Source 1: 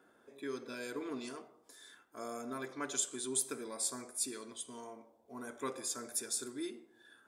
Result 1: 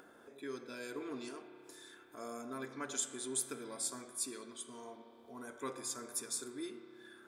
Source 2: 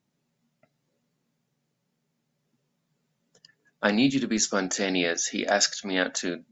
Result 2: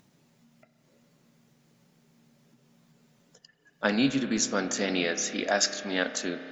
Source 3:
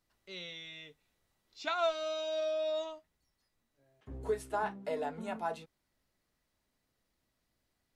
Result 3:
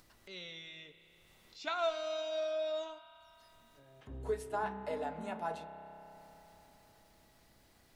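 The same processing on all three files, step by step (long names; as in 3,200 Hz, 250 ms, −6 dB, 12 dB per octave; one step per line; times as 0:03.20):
upward compression, threshold −48 dBFS
spring reverb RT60 4 s, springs 30 ms, chirp 75 ms, DRR 9 dB
level −2.5 dB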